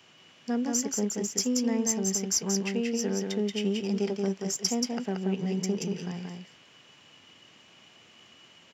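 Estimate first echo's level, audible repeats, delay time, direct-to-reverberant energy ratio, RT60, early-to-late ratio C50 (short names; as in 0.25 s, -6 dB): -4.0 dB, 1, 0.18 s, none, none, none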